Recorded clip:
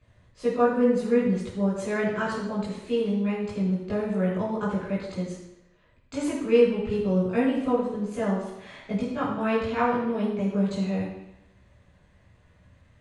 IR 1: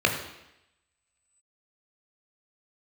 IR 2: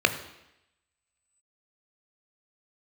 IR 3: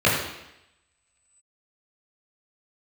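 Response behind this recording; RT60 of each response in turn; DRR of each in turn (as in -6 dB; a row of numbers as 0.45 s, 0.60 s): 3; 0.85 s, 0.85 s, 0.85 s; 2.0 dB, 8.0 dB, -8.0 dB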